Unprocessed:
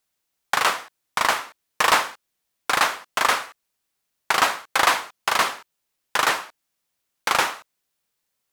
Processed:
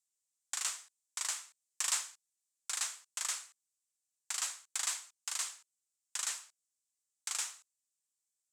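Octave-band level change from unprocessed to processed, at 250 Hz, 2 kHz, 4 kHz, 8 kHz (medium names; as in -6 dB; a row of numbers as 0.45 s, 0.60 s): under -35 dB, -23.5 dB, -15.0 dB, -3.5 dB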